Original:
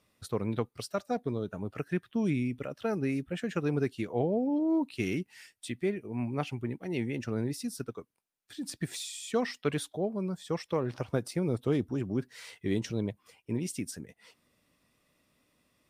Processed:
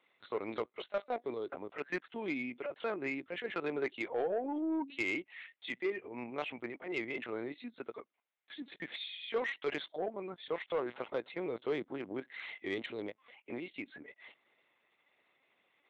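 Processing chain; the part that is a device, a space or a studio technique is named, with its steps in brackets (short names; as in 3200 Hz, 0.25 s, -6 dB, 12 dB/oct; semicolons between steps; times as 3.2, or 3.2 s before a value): 4.52–5.07 de-hum 92.45 Hz, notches 4; talking toy (LPC vocoder at 8 kHz pitch kept; HPF 440 Hz 12 dB/oct; bell 2100 Hz +7 dB 0.22 oct; soft clip -27 dBFS, distortion -17 dB); gain +1.5 dB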